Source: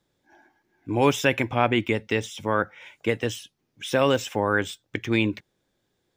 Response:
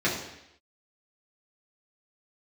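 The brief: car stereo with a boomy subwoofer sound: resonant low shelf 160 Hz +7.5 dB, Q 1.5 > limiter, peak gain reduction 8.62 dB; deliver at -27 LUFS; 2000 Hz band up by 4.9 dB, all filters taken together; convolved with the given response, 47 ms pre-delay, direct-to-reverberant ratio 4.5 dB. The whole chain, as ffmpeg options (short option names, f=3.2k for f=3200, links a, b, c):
-filter_complex "[0:a]equalizer=f=2k:t=o:g=6.5,asplit=2[a][b];[1:a]atrim=start_sample=2205,adelay=47[c];[b][c]afir=irnorm=-1:irlink=0,volume=-18dB[d];[a][d]amix=inputs=2:normalize=0,lowshelf=f=160:t=q:w=1.5:g=7.5,volume=-3.5dB,alimiter=limit=-14.5dB:level=0:latency=1"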